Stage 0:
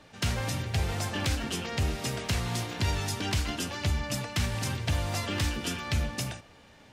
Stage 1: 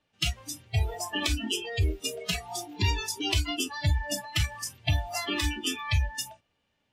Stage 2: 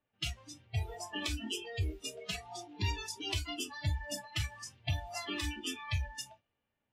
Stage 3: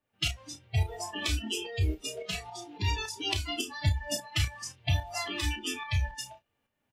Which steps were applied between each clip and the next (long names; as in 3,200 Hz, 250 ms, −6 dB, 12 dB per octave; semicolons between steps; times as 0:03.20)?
noise reduction from a noise print of the clip's start 26 dB; parametric band 2,900 Hz +6.5 dB 0.49 octaves; level +4 dB
low-pass that shuts in the quiet parts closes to 2,200 Hz, open at −25 dBFS; flanger 1.2 Hz, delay 8 ms, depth 1.8 ms, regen −59%; level −4 dB
shaped tremolo saw up 3.6 Hz, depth 60%; double-tracking delay 32 ms −8 dB; level +7.5 dB